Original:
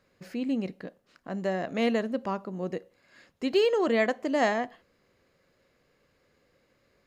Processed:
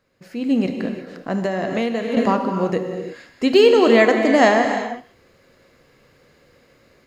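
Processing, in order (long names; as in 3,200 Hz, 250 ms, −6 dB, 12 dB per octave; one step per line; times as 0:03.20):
automatic gain control gain up to 12 dB
reverb whose tail is shaped and stops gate 380 ms flat, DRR 4.5 dB
0:01.40–0:02.17: downward compressor 10 to 1, threshold −19 dBFS, peak gain reduction 11.5 dB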